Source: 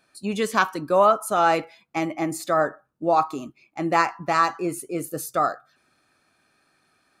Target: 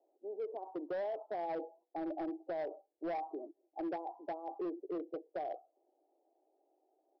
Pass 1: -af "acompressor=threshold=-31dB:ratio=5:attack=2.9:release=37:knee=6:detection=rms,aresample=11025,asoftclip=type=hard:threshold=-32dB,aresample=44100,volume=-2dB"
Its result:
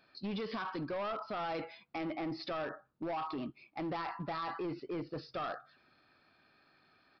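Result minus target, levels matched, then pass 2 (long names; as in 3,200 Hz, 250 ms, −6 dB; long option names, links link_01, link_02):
500 Hz band −3.0 dB
-af "acompressor=threshold=-31dB:ratio=5:attack=2.9:release=37:knee=6:detection=rms,asuperpass=centerf=510:order=12:qfactor=0.99,aresample=11025,asoftclip=type=hard:threshold=-32dB,aresample=44100,volume=-2dB"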